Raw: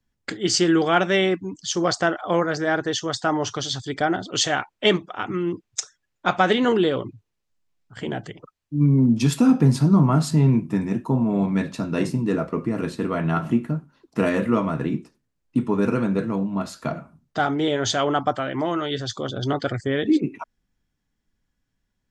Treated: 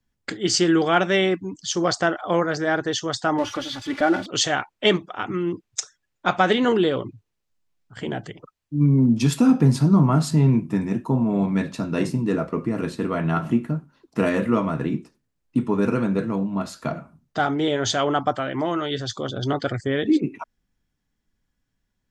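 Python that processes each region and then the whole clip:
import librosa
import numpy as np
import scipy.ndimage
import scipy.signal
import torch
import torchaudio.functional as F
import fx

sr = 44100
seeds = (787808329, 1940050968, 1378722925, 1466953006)

y = fx.chain(x, sr, fx.crossing_spikes(level_db=-17.5),
    fx.lowpass(hz=2300.0, slope=12),
    fx.comb(ms=3.5, depth=0.85), at=(3.38, 4.26))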